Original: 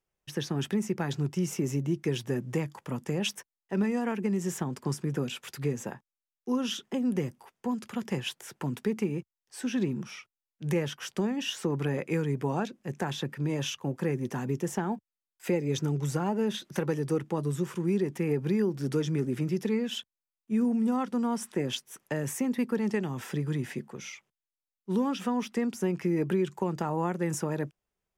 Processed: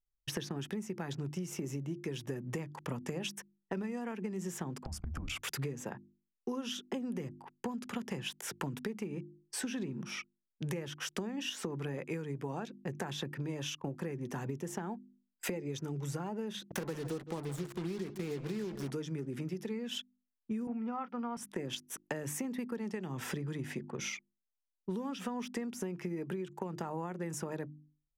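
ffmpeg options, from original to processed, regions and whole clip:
-filter_complex "[0:a]asettb=1/sr,asplit=3[s0][s1][s2];[s0]atrim=end=4.844[s3];[s1]atrim=start=4.84:end=5.42,asetpts=PTS-STARTPTS,afade=t=in:d=0.004:c=qsin,afade=t=out:st=0.576:d=0.004:c=qsin,acompressor=threshold=0.0126:ratio=12:attack=3.2:release=140:knee=1:detection=peak,afreqshift=-220[s4];[s2]atrim=start=5.416[s5];[s3][s4]acrossfade=d=0.004:c1=hsin:c2=qsin[s6];[s6][s5]acrossfade=d=0.004:c1=qsin:c2=hsin,asettb=1/sr,asplit=3[s7][s8][s9];[s7]atrim=end=16.644[s10];[s8]atrim=start=16.64:end=18.91,asetpts=PTS-STARTPTS,afade=t=in:d=0.004:c=qsin,afade=t=out:st=2.266:d=0.004:c=qsin,acrusher=bits=5:mix=0:aa=0.5,aecho=1:1:163:0.178,atrim=end_sample=100107[s11];[s9]atrim=start=18.906[s12];[s10][s11]acrossfade=d=0.004:c1=hsin:c2=qsin[s13];[s13][s12]acrossfade=d=0.004:c1=qsin:c2=hsin,asettb=1/sr,asplit=3[s14][s15][s16];[s14]atrim=end=20.674[s17];[s15]atrim=start=20.67:end=21.37,asetpts=PTS-STARTPTS,afade=t=in:d=0.004:c=qsin,afade=t=out:st=0.696:d=0.004:c=qsin,highpass=190,equalizer=f=360:t=q:w=4:g=-4,equalizer=f=800:t=q:w=4:g=7,equalizer=f=1300:t=q:w=4:g=9,equalizer=f=2300:t=q:w=4:g=7,equalizer=f=3800:t=q:w=4:g=-6,lowpass=f=4100:w=0.5412,lowpass=f=4100:w=1.3066,asplit=2[s18][s19];[s19]adelay=21,volume=0.2[s20];[s18][s20]amix=inputs=2:normalize=0,atrim=end_sample=30870[s21];[s16]atrim=start=21.366[s22];[s17][s21]acrossfade=d=0.004:c1=hsin:c2=qsin[s23];[s23][s22]acrossfade=d=0.004:c1=qsin:c2=hsin,anlmdn=0.00398,bandreject=f=50:t=h:w=6,bandreject=f=100:t=h:w=6,bandreject=f=150:t=h:w=6,bandreject=f=200:t=h:w=6,bandreject=f=250:t=h:w=6,bandreject=f=300:t=h:w=6,bandreject=f=350:t=h:w=6,acompressor=threshold=0.00891:ratio=16,volume=2.11"

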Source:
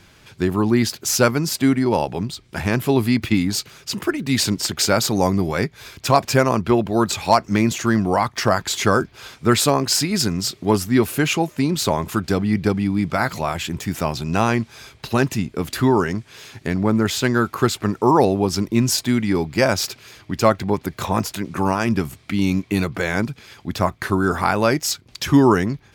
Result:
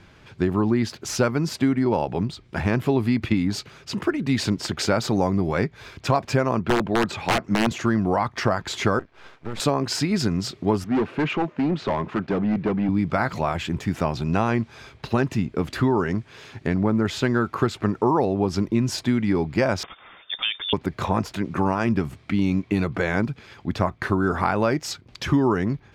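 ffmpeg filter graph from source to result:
-filter_complex "[0:a]asettb=1/sr,asplit=3[s0][s1][s2];[s0]atrim=end=6.594[s3];[s1]atrim=start=6.59:end=7.71,asetpts=PTS-STARTPTS,afade=t=in:d=0.004:c=qsin,afade=t=out:st=1.116:d=0.004:c=qsin,highpass=f=150:p=1,bass=f=250:g=2,treble=f=4000:g=-6,aeval=exprs='(mod(2.82*val(0)+1,2)-1)/2.82':c=same[s4];[s2]atrim=start=7.706[s5];[s3][s4]acrossfade=d=0.004:c1=hsin:c2=qsin[s6];[s6][s5]acrossfade=d=0.004:c1=qsin:c2=hsin,asettb=1/sr,asplit=3[s7][s8][s9];[s7]atrim=end=8.994[s10];[s8]atrim=start=8.99:end=9.6,asetpts=PTS-STARTPTS,afade=t=in:d=0.004:c=qsin,afade=t=out:st=0.606:d=0.004:c=qsin,bass=f=250:g=-12,treble=f=4000:g=-11,acrossover=split=210|3000[s11][s12][s13];[s12]acompressor=threshold=0.0316:ratio=6:attack=3.2:release=140:knee=2.83:detection=peak[s14];[s11][s14][s13]amix=inputs=3:normalize=0,aeval=exprs='max(val(0),0)':c=same[s15];[s9]atrim=start=9.596[s16];[s10][s15]acrossfade=d=0.004:c1=hsin:c2=qsin[s17];[s17][s16]acrossfade=d=0.004:c1=qsin:c2=hsin,asettb=1/sr,asplit=3[s18][s19][s20];[s18]atrim=end=10.844[s21];[s19]atrim=start=10.84:end=12.89,asetpts=PTS-STARTPTS,afade=t=in:d=0.004:c=qsin,afade=t=out:st=2.046:d=0.004:c=qsin,acrusher=bits=7:mix=0:aa=0.5,highpass=150,lowpass=2600,asoftclip=type=hard:threshold=0.119[s22];[s20]atrim=start=12.886[s23];[s21][s22]acrossfade=d=0.004:c1=hsin:c2=qsin[s24];[s24][s23]acrossfade=d=0.004:c1=qsin:c2=hsin,asettb=1/sr,asplit=3[s25][s26][s27];[s25]atrim=end=19.834[s28];[s26]atrim=start=19.83:end=20.73,asetpts=PTS-STARTPTS,afade=t=in:d=0.004:c=qsin,afade=t=out:st=0.896:d=0.004:c=qsin,equalizer=f=950:t=o:w=0.24:g=4,acompressor=threshold=0.158:ratio=5:attack=3.2:release=140:knee=1:detection=peak,lowpass=f=3100:t=q:w=0.5098,lowpass=f=3100:t=q:w=0.6013,lowpass=f=3100:t=q:w=0.9,lowpass=f=3100:t=q:w=2.563,afreqshift=-3700[s29];[s27]atrim=start=20.726[s30];[s28][s29]acrossfade=d=0.004:c1=hsin:c2=qsin[s31];[s31][s30]acrossfade=d=0.004:c1=qsin:c2=hsin,aemphasis=mode=reproduction:type=75fm,acompressor=threshold=0.141:ratio=4"

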